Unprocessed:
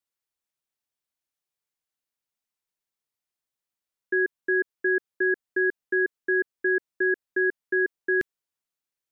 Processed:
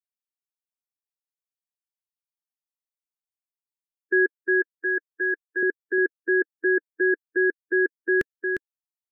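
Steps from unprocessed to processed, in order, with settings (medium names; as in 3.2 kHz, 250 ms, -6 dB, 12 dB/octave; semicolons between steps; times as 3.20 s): expander on every frequency bin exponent 1.5; 4.37–5.63 s: high-pass 800 Hz 6 dB/octave; delay 354 ms -6.5 dB; trim +4 dB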